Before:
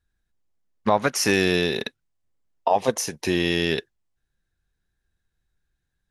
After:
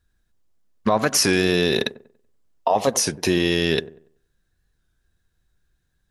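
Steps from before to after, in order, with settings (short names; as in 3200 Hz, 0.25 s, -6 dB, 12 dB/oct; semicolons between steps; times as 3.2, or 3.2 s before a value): bell 2200 Hz -3 dB 0.77 oct; notch 830 Hz, Q 12; limiter -15 dBFS, peak gain reduction 7 dB; on a send: dark delay 95 ms, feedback 32%, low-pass 1000 Hz, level -16 dB; on the sum: record warp 33 1/3 rpm, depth 100 cents; gain +7 dB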